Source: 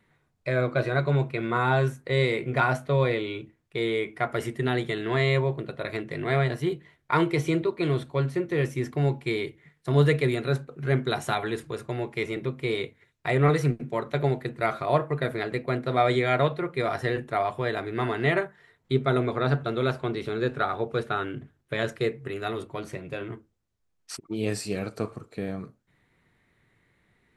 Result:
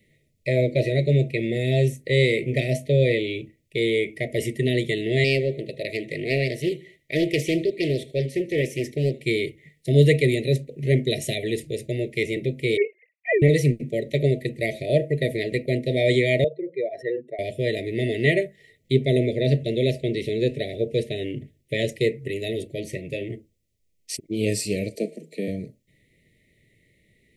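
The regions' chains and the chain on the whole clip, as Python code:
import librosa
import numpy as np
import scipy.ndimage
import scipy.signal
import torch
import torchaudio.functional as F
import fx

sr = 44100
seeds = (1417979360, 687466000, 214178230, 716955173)

y = fx.chain(x, sr, fx.low_shelf(hz=170.0, db=-8.0),
    fx.echo_feedback(ms=77, feedback_pct=43, wet_db=-20),
    fx.doppler_dist(depth_ms=0.39), at=(5.24, 9.22))
y = fx.chain(y, sr, fx.sine_speech(),
    fx.resample_bad(factor=8, down='none', up='filtered'), at=(12.77, 13.42))
y = fx.chain(y, sr, fx.spec_expand(power=2.0),
    fx.highpass(hz=420.0, slope=12), at=(16.44, 17.39))
y = fx.chain(y, sr, fx.cheby1_highpass(hz=160.0, order=10),
    fx.peak_eq(hz=830.0, db=9.5, octaves=0.39), at=(24.95, 25.48))
y = scipy.signal.sosfilt(scipy.signal.cheby1(5, 1.0, [640.0, 1900.0], 'bandstop', fs=sr, output='sos'), y)
y = fx.high_shelf(y, sr, hz=6600.0, db=5.5)
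y = y * librosa.db_to_amplitude(5.0)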